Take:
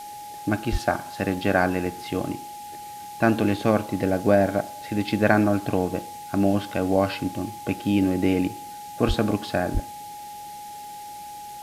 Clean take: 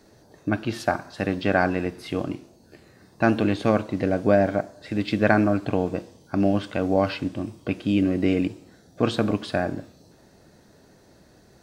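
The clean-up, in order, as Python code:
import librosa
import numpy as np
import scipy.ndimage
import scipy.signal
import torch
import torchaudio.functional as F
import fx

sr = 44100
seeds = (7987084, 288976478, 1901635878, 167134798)

y = fx.notch(x, sr, hz=830.0, q=30.0)
y = fx.fix_deplosive(y, sr, at_s=(0.71, 9.07, 9.73))
y = fx.noise_reduce(y, sr, print_start_s=11.1, print_end_s=11.6, reduce_db=16.0)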